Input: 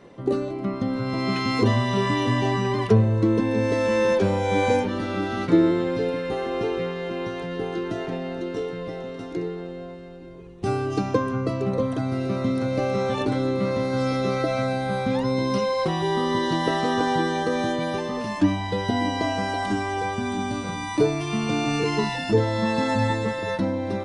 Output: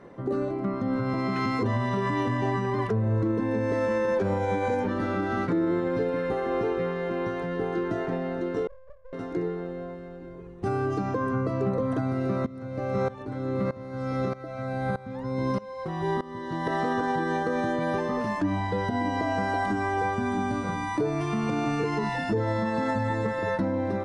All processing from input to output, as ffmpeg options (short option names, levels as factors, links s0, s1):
-filter_complex "[0:a]asettb=1/sr,asplit=3[s0][s1][s2];[s0]atrim=end=8.674[s3];[s1]atrim=start=8.67:end=9.13,asetpts=PTS-STARTPTS,afade=t=in:d=0.004:c=qsin,afade=t=out:st=0.456:d=0.004:c=qsin,asuperpass=centerf=260:order=8:qfactor=3.5,aeval=exprs='abs(val(0))':c=same[s4];[s2]atrim=start=9.126[s5];[s3][s4]acrossfade=d=0.004:c1=hsin:c2=qsin[s6];[s6][s5]acrossfade=d=0.004:c1=qsin:c2=hsin,asettb=1/sr,asplit=3[s7][s8][s9];[s7]atrim=end=12.464[s10];[s8]atrim=start=12.46:end=16.67,asetpts=PTS-STARTPTS,afade=t=in:d=0.004:c=qsin,afade=t=out:st=4.206:d=0.004:c=qsin,equalizer=f=78:w=0.99:g=7.5,aeval=exprs='val(0)*pow(10,-19*if(lt(mod(-1.6*n/s,1),2*abs(-1.6)/1000),1-mod(-1.6*n/s,1)/(2*abs(-1.6)/1000),(mod(-1.6*n/s,1)-2*abs(-1.6)/1000)/(1-2*abs(-1.6)/1000))/20)':c=same[s11];[s9]atrim=start=16.666[s12];[s10][s11]acrossfade=d=0.004:c1=hsin:c2=qsin[s13];[s13][s12]acrossfade=d=0.004:c1=qsin:c2=hsin,alimiter=limit=0.126:level=0:latency=1:release=113,highshelf=f=2200:t=q:w=1.5:g=-7"